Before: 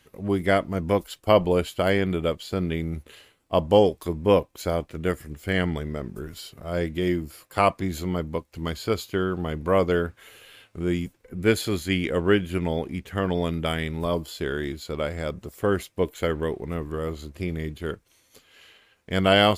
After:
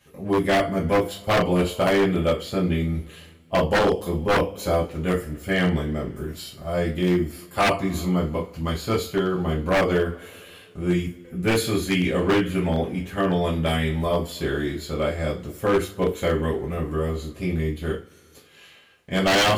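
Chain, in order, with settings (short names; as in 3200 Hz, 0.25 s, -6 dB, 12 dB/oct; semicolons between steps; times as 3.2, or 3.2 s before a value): two-slope reverb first 0.28 s, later 2.2 s, from -27 dB, DRR -6 dB; wavefolder -9 dBFS; gain -4 dB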